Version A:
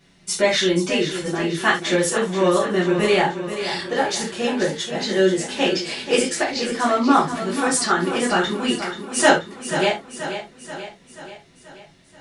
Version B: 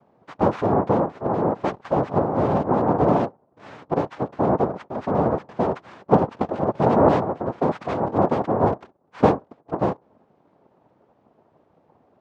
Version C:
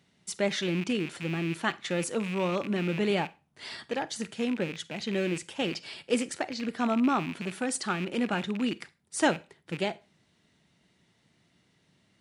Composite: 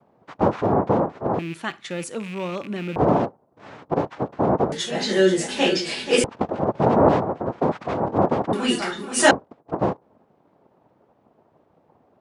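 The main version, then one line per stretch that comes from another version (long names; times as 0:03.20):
B
0:01.39–0:02.96: punch in from C
0:04.72–0:06.24: punch in from A
0:08.53–0:09.31: punch in from A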